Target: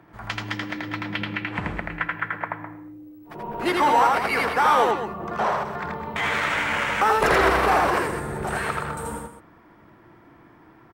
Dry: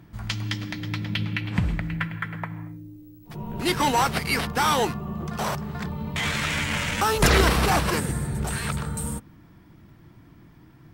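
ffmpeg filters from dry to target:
-filter_complex "[0:a]acrossover=split=350 2100:gain=0.141 1 0.178[a][b][c];[a][b][c]amix=inputs=3:normalize=0,aecho=1:1:81.63|207:0.794|0.282,asplit=2[d][e];[e]alimiter=limit=-20.5dB:level=0:latency=1:release=358,volume=1dB[f];[d][f]amix=inputs=2:normalize=0,asettb=1/sr,asplit=3[g][h][i];[g]atrim=end=4.914[j];[h]atrim=start=4.91:end=6,asetpts=PTS-STARTPTS,afade=t=in:d=0.004:c=qsin,afade=t=out:st=1.086:d=0.004:c=qsin,acrossover=split=6200[k][l];[l]acompressor=threshold=-59dB:ratio=4:attack=1:release=60[m];[k][m]amix=inputs=2:normalize=0[n];[i]atrim=start=5.996[o];[j][n]acrossfade=d=0.004:c1=hsin:c2=qsin[p];[p][o]acrossfade=d=0.004:c1=qsin:c2=hsin"

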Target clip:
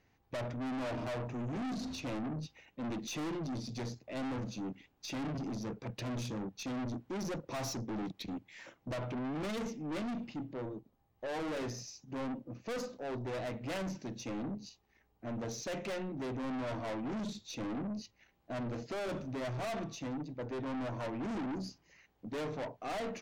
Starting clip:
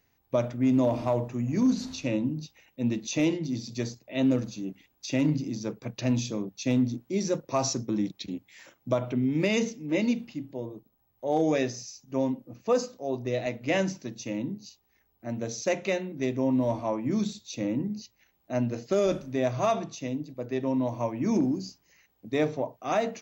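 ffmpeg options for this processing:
-af "aemphasis=mode=reproduction:type=50fm,aeval=exprs='(tanh(70.8*val(0)+0.15)-tanh(0.15))/70.8':c=same,volume=1dB"

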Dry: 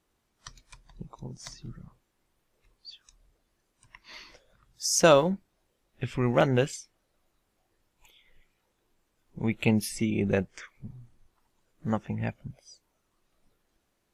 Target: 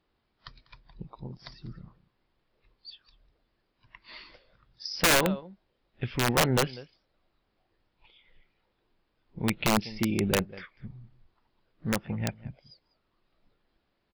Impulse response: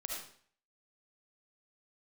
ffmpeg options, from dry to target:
-af "aresample=11025,aresample=44100,aecho=1:1:196:0.1,aeval=exprs='(mod(5.96*val(0)+1,2)-1)/5.96':c=same"

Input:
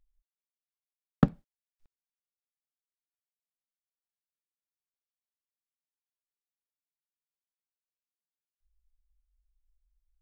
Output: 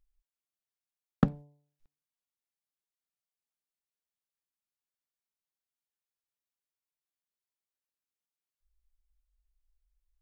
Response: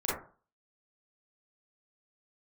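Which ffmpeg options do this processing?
-af "bandreject=f=145.4:t=h:w=4,bandreject=f=290.8:t=h:w=4,bandreject=f=436.2:t=h:w=4,bandreject=f=581.6:t=h:w=4,bandreject=f=727:t=h:w=4,bandreject=f=872.4:t=h:w=4,bandreject=f=1.0178k:t=h:w=4,volume=-2dB"

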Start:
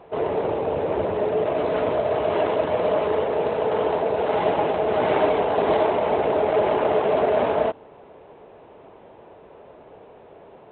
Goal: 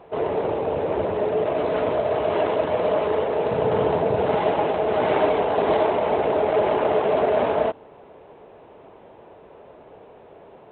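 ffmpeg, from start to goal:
-filter_complex "[0:a]asettb=1/sr,asplit=3[a][b][c];[a]atrim=end=3.514[d];[b]atrim=start=3.51:end=4.35,asetpts=PTS-STARTPTS,afade=t=in:d=0.004:c=qsin,afade=t=out:st=0.836:d=0.004:c=qsin,equalizer=f=120:t=o:w=1.6:g=12[e];[c]atrim=start=4.346[f];[d][e]acrossfade=d=0.004:c1=hsin:c2=qsin[g];[g][f]acrossfade=d=0.004:c1=qsin:c2=hsin"

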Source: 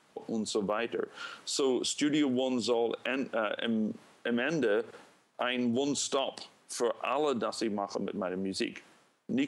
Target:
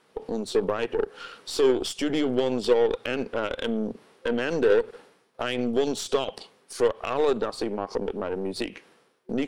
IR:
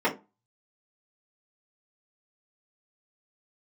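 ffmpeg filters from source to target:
-af "superequalizer=7b=2.24:15b=0.562,aeval=exprs='0.224*(cos(1*acos(clip(val(0)/0.224,-1,1)))-cos(1*PI/2))+0.0224*(cos(3*acos(clip(val(0)/0.224,-1,1)))-cos(3*PI/2))+0.01*(cos(8*acos(clip(val(0)/0.224,-1,1)))-cos(8*PI/2))':c=same,volume=4dB"

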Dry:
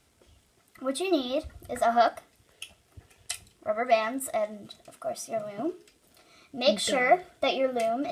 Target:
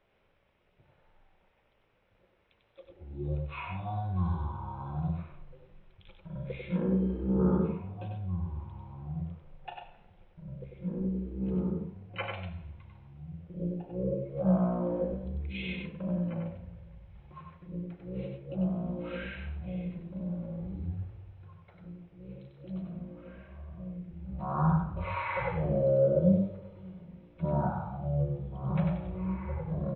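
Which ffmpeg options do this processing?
-filter_complex "[0:a]equalizer=f=1.9k:t=o:w=0.68:g=9,asplit=2[a][b];[b]adelay=26,volume=-4dB[c];[a][c]amix=inputs=2:normalize=0,bandreject=f=175.4:t=h:w=4,bandreject=f=350.8:t=h:w=4,bandreject=f=526.2:t=h:w=4,asplit=2[d][e];[e]adelay=1117,lowpass=f=1.2k:p=1,volume=-3dB,asplit=2[f][g];[g]adelay=1117,lowpass=f=1.2k:p=1,volume=0.46,asplit=2[h][i];[i]adelay=1117,lowpass=f=1.2k:p=1,volume=0.46,asplit=2[j][k];[k]adelay=1117,lowpass=f=1.2k:p=1,volume=0.46,asplit=2[l][m];[m]adelay=1117,lowpass=f=1.2k:p=1,volume=0.46,asplit=2[n][o];[o]adelay=1117,lowpass=f=1.2k:p=1,volume=0.46[p];[f][h][j][l][n][p]amix=inputs=6:normalize=0[q];[d][q]amix=inputs=2:normalize=0,asetrate=11951,aresample=44100,volume=-7.5dB"

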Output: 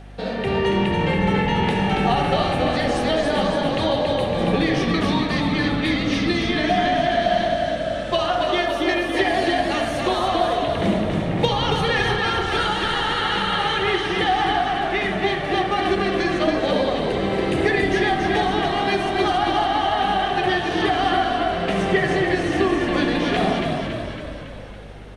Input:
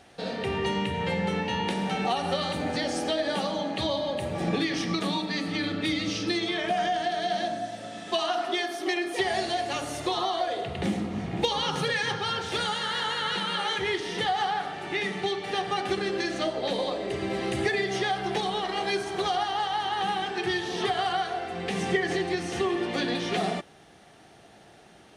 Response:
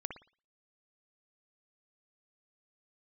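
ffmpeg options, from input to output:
-filter_complex "[0:a]asplit=9[a][b][c][d][e][f][g][h][i];[b]adelay=279,afreqshift=-40,volume=-4dB[j];[c]adelay=558,afreqshift=-80,volume=-8.6dB[k];[d]adelay=837,afreqshift=-120,volume=-13.2dB[l];[e]adelay=1116,afreqshift=-160,volume=-17.7dB[m];[f]adelay=1395,afreqshift=-200,volume=-22.3dB[n];[g]adelay=1674,afreqshift=-240,volume=-26.9dB[o];[h]adelay=1953,afreqshift=-280,volume=-31.5dB[p];[i]adelay=2232,afreqshift=-320,volume=-36.1dB[q];[a][j][k][l][m][n][o][p][q]amix=inputs=9:normalize=0,asplit=2[r][s];[1:a]atrim=start_sample=2205,lowpass=3.8k[t];[s][t]afir=irnorm=-1:irlink=0,volume=2.5dB[u];[r][u]amix=inputs=2:normalize=0,aeval=exprs='val(0)+0.0112*(sin(2*PI*50*n/s)+sin(2*PI*2*50*n/s)/2+sin(2*PI*3*50*n/s)/3+sin(2*PI*4*50*n/s)/4+sin(2*PI*5*50*n/s)/5)':c=same"

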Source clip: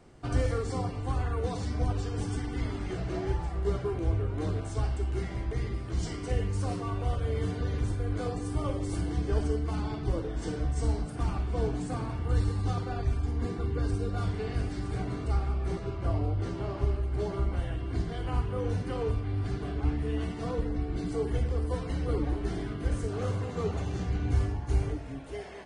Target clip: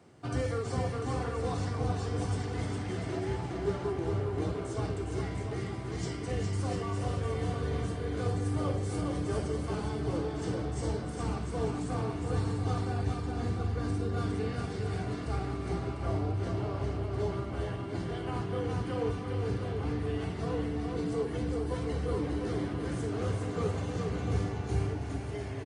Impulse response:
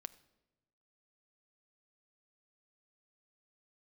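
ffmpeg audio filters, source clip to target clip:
-filter_complex "[0:a]highpass=f=85:w=0.5412,highpass=f=85:w=1.3066,asplit=2[a][b];[b]aecho=0:1:410|697|897.9|1039|1137:0.631|0.398|0.251|0.158|0.1[c];[a][c]amix=inputs=2:normalize=0,volume=-1.5dB"

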